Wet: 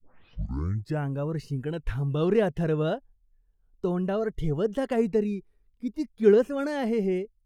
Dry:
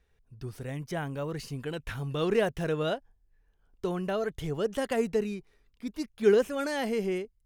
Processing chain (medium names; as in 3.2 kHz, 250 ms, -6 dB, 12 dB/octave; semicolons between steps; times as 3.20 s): tape start-up on the opening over 1.06 s; tilt EQ -2.5 dB/octave; spectral noise reduction 11 dB